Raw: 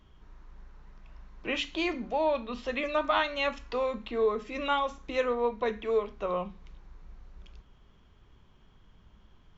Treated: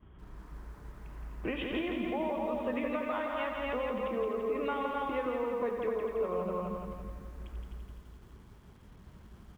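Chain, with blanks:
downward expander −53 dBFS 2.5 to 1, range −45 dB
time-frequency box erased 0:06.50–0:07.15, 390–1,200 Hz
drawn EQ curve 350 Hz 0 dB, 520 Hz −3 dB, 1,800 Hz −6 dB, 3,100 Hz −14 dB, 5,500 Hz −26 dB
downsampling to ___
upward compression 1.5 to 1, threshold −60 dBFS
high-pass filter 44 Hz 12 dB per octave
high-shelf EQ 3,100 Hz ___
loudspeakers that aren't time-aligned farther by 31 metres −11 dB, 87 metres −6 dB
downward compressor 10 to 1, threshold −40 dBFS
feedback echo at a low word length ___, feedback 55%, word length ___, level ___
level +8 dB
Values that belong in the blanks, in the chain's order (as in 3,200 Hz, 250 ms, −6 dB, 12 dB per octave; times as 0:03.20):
8,000 Hz, +6 dB, 168 ms, 12 bits, −4 dB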